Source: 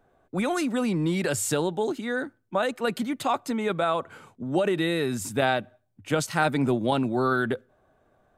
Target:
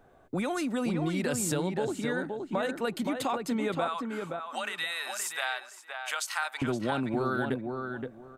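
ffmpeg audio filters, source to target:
-filter_complex "[0:a]asettb=1/sr,asplit=3[a][b][c];[a]atrim=end=3.874[d];[b]atrim=start=3.87:end=6.62,asetpts=PTS-STARTPTS,afade=t=in:d=0.004:c=qsin,afade=t=out:st=2.746:d=0.004:c=qsin,highpass=f=910:w=0.5412,highpass=f=910:w=1.3066[e];[c]atrim=start=6.616[f];[d][e]acrossfade=d=0.004:c1=hsin:c2=qsin[g];[g][f]acrossfade=d=0.004:c1=qsin:c2=hsin,acompressor=threshold=-37dB:ratio=2.5,asplit=2[h][i];[i]adelay=521,lowpass=f=1.9k:p=1,volume=-4.5dB,asplit=2[j][k];[k]adelay=521,lowpass=f=1.9k:p=1,volume=0.21,asplit=2[l][m];[m]adelay=521,lowpass=f=1.9k:p=1,volume=0.21[n];[h][j][l][n]amix=inputs=4:normalize=0,volume=4.5dB"

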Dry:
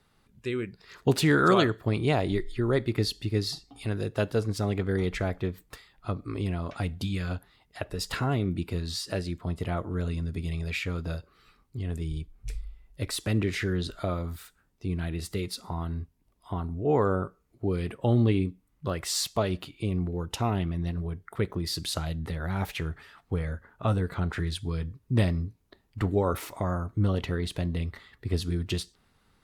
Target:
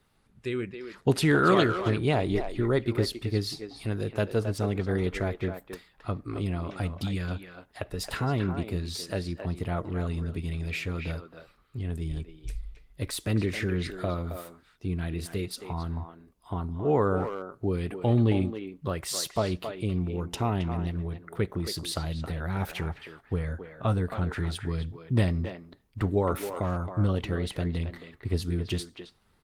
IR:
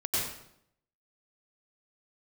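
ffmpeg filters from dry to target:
-filter_complex "[0:a]asplit=2[a][b];[b]adelay=270,highpass=300,lowpass=3.4k,asoftclip=type=hard:threshold=-19dB,volume=-7dB[c];[a][c]amix=inputs=2:normalize=0" -ar 48000 -c:a libopus -b:a 24k

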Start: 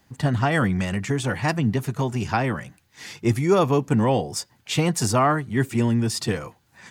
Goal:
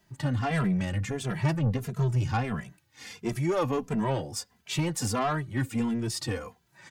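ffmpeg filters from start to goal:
-filter_complex "[0:a]asettb=1/sr,asplit=3[a][b][c];[a]atrim=end=0.504[d];[b]atrim=start=0.5:end=2.6,asetpts=PTS-STARTPTS,afade=t=in:d=0.004:c=qsin,afade=t=out:st=2.096:d=0.004:c=qsin,equalizer=f=130:w=1.4:g=9[e];[c]atrim=start=2.596[f];[d][e]acrossfade=d=0.004:c1=hsin:c2=qsin[g];[g][f]acrossfade=d=0.004:c1=qsin:c2=hsin,asoftclip=type=tanh:threshold=-17dB,asplit=2[h][i];[i]adelay=2.6,afreqshift=-1.5[j];[h][j]amix=inputs=2:normalize=1,volume=-2dB"

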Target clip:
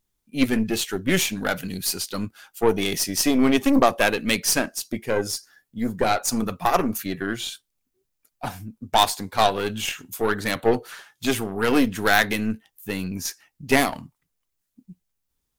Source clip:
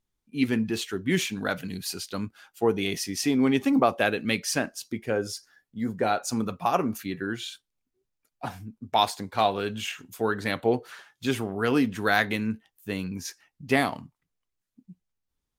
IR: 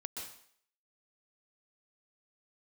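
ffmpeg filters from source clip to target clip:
-af "aeval=exprs='0.447*(cos(1*acos(clip(val(0)/0.447,-1,1)))-cos(1*PI/2))+0.0355*(cos(8*acos(clip(val(0)/0.447,-1,1)))-cos(8*PI/2))':c=same,crystalizer=i=1:c=0,volume=3.5dB"

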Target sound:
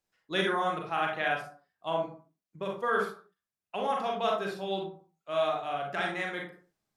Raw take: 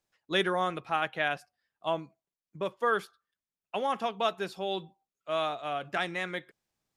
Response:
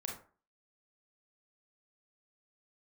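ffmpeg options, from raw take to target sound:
-filter_complex "[1:a]atrim=start_sample=2205,afade=t=out:st=0.36:d=0.01,atrim=end_sample=16317,asetrate=40572,aresample=44100[a];[0:a][a]afir=irnorm=-1:irlink=0"

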